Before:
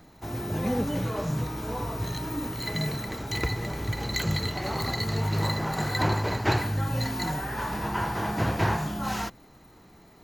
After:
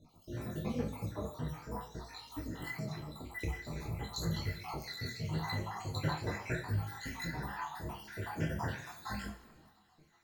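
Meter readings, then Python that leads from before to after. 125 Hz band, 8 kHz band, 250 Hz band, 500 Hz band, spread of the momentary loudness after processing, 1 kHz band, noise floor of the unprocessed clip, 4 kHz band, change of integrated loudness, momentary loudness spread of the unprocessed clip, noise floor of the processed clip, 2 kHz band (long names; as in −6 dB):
−10.0 dB, −11.0 dB, −10.5 dB, −11.5 dB, 8 LU, −12.5 dB, −54 dBFS, −12.0 dB, −11.0 dB, 6 LU, −66 dBFS, −10.0 dB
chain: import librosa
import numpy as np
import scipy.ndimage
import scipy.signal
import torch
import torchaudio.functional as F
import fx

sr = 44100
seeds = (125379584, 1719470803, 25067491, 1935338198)

y = fx.spec_dropout(x, sr, seeds[0], share_pct=66)
y = fx.rev_double_slope(y, sr, seeds[1], early_s=0.49, late_s=2.5, knee_db=-19, drr_db=2.5)
y = fx.detune_double(y, sr, cents=15)
y = F.gain(torch.from_numpy(y), -4.5).numpy()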